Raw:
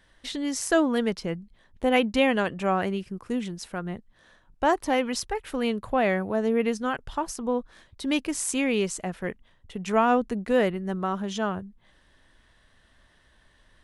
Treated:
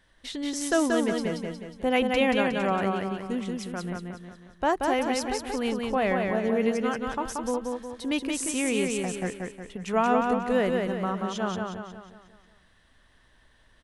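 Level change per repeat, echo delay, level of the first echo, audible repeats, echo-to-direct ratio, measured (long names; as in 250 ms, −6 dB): −6.5 dB, 181 ms, −3.5 dB, 5, −2.5 dB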